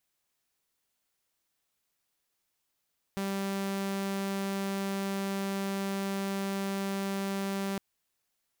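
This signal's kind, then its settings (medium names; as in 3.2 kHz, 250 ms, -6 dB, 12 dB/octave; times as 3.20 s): tone saw 196 Hz -28 dBFS 4.61 s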